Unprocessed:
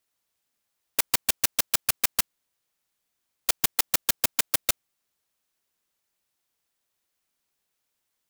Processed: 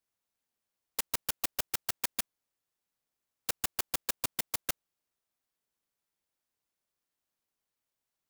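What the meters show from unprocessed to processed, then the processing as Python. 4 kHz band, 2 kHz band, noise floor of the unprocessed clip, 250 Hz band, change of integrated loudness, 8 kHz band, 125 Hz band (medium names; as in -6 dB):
-9.5 dB, -9.0 dB, -80 dBFS, -6.0 dB, -9.5 dB, -10.0 dB, -6.0 dB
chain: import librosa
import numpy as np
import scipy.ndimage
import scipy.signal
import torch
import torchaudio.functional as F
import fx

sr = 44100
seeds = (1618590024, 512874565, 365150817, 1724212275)

y = fx.clock_jitter(x, sr, seeds[0], jitter_ms=0.11)
y = y * 10.0 ** (-7.5 / 20.0)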